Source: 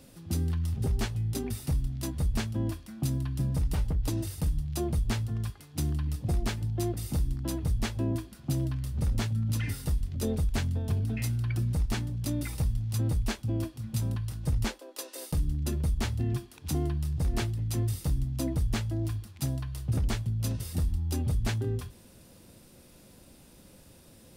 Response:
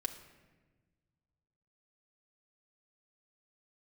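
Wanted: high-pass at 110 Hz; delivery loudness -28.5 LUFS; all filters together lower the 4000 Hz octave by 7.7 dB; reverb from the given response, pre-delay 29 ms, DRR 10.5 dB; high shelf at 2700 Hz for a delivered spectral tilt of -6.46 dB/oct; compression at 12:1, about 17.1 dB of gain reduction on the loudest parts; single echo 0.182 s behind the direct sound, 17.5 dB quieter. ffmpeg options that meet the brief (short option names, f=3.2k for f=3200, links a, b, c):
-filter_complex "[0:a]highpass=110,highshelf=f=2.7k:g=-4.5,equalizer=f=4k:t=o:g=-6,acompressor=threshold=-45dB:ratio=12,aecho=1:1:182:0.133,asplit=2[a][b];[1:a]atrim=start_sample=2205,adelay=29[c];[b][c]afir=irnorm=-1:irlink=0,volume=-10.5dB[d];[a][d]amix=inputs=2:normalize=0,volume=20.5dB"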